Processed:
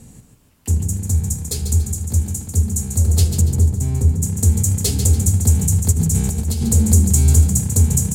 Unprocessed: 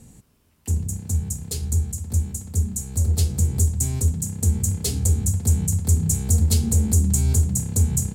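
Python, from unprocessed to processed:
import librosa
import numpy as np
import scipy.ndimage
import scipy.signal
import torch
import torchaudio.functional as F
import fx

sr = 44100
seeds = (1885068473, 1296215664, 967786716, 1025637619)

y = fx.notch(x, sr, hz=2900.0, q=7.4, at=(1.07, 1.57))
y = fx.high_shelf(y, sr, hz=2100.0, db=-12.0, at=(3.41, 4.23))
y = fx.over_compress(y, sr, threshold_db=-23.0, ratio=-1.0, at=(5.91, 6.62), fade=0.02)
y = fx.echo_feedback(y, sr, ms=143, feedback_pct=39, wet_db=-8)
y = y * 10.0 ** (5.0 / 20.0)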